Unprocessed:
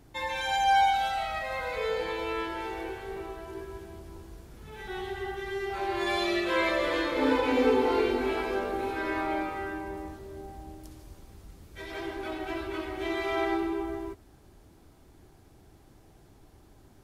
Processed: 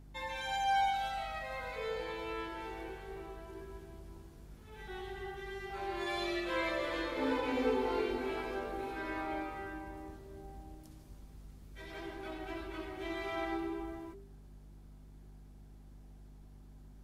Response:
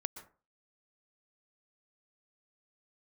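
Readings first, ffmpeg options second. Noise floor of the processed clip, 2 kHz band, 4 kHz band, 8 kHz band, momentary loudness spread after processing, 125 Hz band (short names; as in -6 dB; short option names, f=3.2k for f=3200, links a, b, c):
-55 dBFS, -8.0 dB, -8.0 dB, -8.0 dB, 24 LU, -4.5 dB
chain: -af "aeval=exprs='val(0)+0.00631*(sin(2*PI*50*n/s)+sin(2*PI*2*50*n/s)/2+sin(2*PI*3*50*n/s)/3+sin(2*PI*4*50*n/s)/4+sin(2*PI*5*50*n/s)/5)':c=same,bandreject=f=98.92:t=h:w=4,bandreject=f=197.84:t=h:w=4,bandreject=f=296.76:t=h:w=4,bandreject=f=395.68:t=h:w=4,bandreject=f=494.6:t=h:w=4,volume=-8dB"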